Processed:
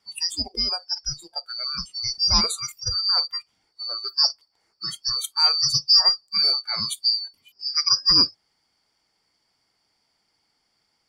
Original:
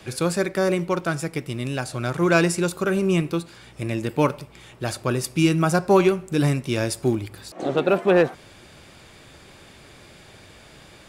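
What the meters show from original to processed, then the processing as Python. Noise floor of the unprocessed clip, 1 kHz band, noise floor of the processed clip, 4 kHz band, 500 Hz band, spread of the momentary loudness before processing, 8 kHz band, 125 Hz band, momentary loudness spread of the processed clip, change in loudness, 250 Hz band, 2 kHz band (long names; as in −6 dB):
−48 dBFS, −7.0 dB, −72 dBFS, +17.5 dB, −23.5 dB, 11 LU, +4.0 dB, −16.0 dB, 15 LU, +2.0 dB, −18.5 dB, −13.0 dB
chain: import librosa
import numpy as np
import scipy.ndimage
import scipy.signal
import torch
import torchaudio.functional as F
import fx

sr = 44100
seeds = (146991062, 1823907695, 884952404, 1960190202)

y = fx.band_shuffle(x, sr, order='2341')
y = fx.noise_reduce_blind(y, sr, reduce_db=24)
y = fx.cheby_harmonics(y, sr, harmonics=(5,), levels_db=(-42,), full_scale_db=-3.5)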